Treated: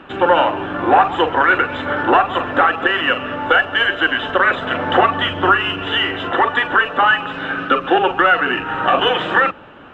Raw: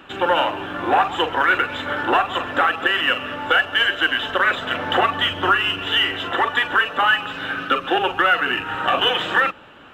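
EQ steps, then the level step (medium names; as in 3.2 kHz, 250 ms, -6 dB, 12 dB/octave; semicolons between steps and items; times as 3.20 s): low-pass 1.4 kHz 6 dB/octave; hum notches 50/100 Hz; +6.5 dB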